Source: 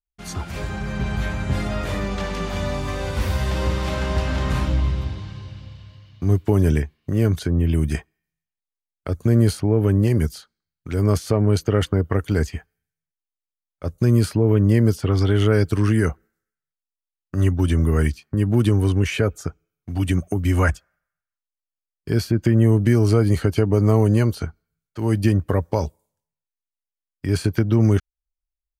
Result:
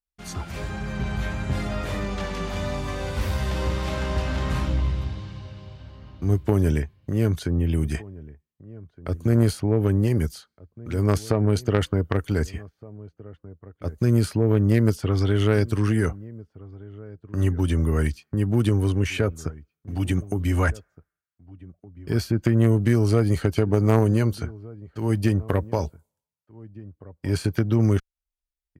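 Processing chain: vibrato 1.6 Hz 12 cents; outdoor echo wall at 260 m, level -20 dB; added harmonics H 3 -14 dB, 5 -24 dB, 6 -37 dB, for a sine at -4.5 dBFS

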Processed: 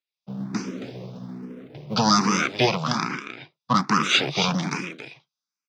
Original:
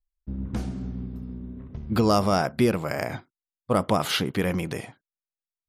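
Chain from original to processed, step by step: minimum comb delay 0.81 ms; Chebyshev band-pass 140–5800 Hz, order 4; high shelf 2500 Hz +11.5 dB; short-mantissa float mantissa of 6-bit; 2.97–3.75 air absorption 64 m; echo 0.273 s -9.5 dB; endless phaser +1.2 Hz; gain +6.5 dB

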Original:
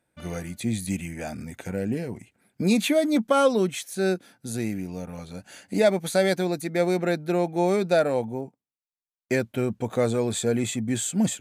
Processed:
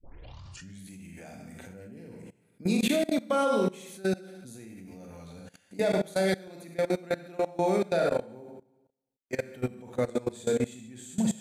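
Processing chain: tape start at the beginning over 0.81 s; Schroeder reverb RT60 0.81 s, combs from 32 ms, DRR 1.5 dB; level quantiser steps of 21 dB; gain -3.5 dB

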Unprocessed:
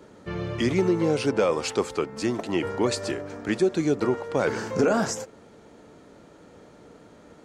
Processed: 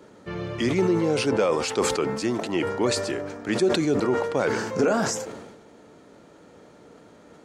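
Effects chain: low shelf 71 Hz -9.5 dB; sustainer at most 46 dB/s

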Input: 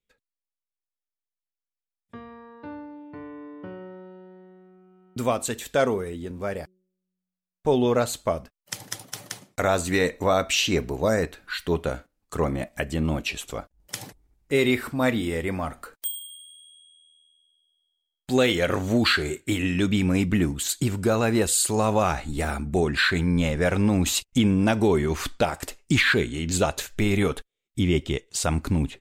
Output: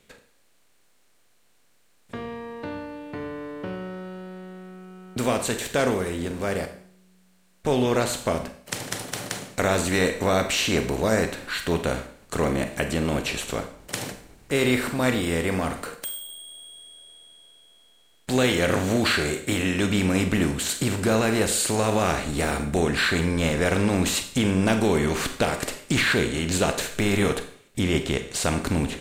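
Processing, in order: per-bin compression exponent 0.6; Schroeder reverb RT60 0.56 s, combs from 32 ms, DRR 8.5 dB; gain -4.5 dB

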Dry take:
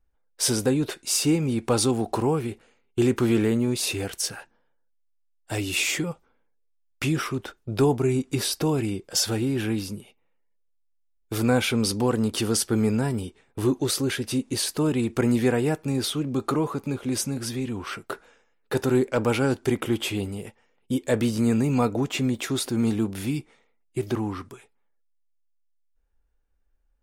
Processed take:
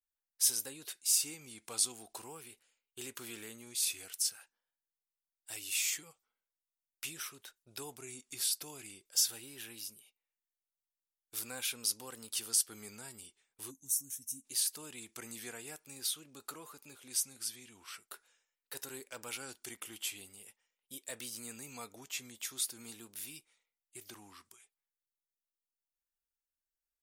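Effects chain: vibrato 0.44 Hz 68 cents; spectral gain 13.7–14.45, 300–5400 Hz -22 dB; pre-emphasis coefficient 0.97; gain -4 dB

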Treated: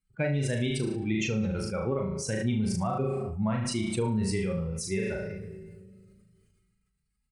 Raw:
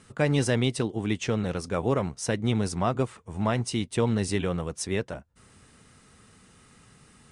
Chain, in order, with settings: per-bin expansion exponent 2; bell 2300 Hz +6.5 dB 0.35 oct; flutter echo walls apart 6.3 m, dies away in 0.42 s; on a send at -19 dB: reverb RT60 1.9 s, pre-delay 5 ms; on the sum: harmonic-percussive split harmonic +4 dB; doubler 42 ms -7.5 dB; compressor, threshold -24 dBFS, peak gain reduction 9 dB; low shelf 450 Hz +4 dB; sustainer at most 25 dB/s; gain -4 dB

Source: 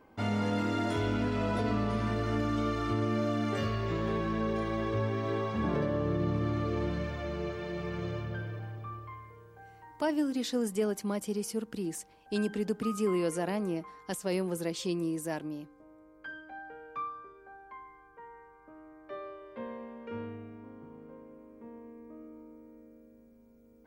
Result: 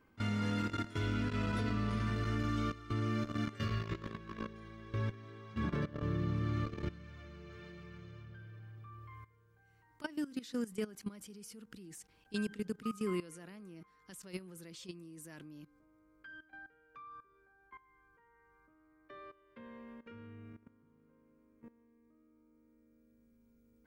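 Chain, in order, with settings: EQ curve 130 Hz 0 dB, 370 Hz -6 dB, 770 Hz -13 dB, 1300 Hz -1 dB; level quantiser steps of 17 dB

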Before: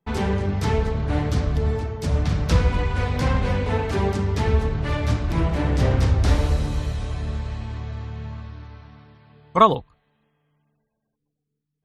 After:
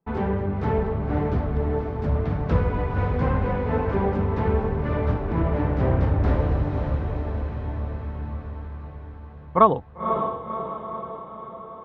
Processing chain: LPF 1400 Hz 12 dB/oct; low shelf 100 Hz -6.5 dB; diffused feedback echo 0.532 s, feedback 58%, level -6.5 dB

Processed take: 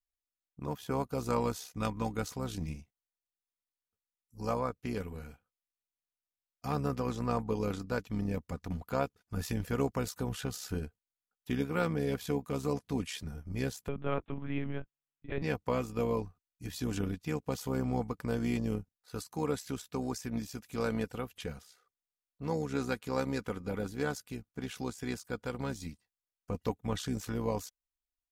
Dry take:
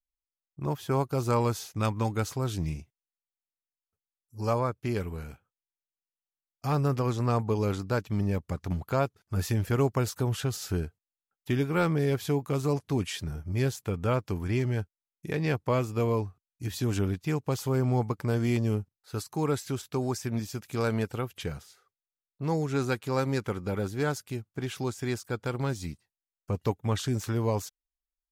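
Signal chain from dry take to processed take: AM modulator 66 Hz, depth 40%; comb 4.1 ms, depth 40%; 13.88–15.42 monotone LPC vocoder at 8 kHz 140 Hz; gain -3 dB

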